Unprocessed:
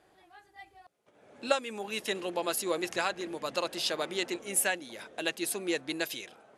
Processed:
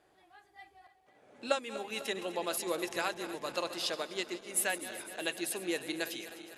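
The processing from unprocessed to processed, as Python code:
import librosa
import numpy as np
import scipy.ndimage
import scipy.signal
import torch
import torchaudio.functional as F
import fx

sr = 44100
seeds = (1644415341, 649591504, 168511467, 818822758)

y = fx.reverse_delay_fb(x, sr, ms=126, feedback_pct=81, wet_db=-13.5)
y = fx.hum_notches(y, sr, base_hz=50, count=4)
y = fx.upward_expand(y, sr, threshold_db=-40.0, expansion=1.5, at=(3.94, 4.57))
y = y * librosa.db_to_amplitude(-3.5)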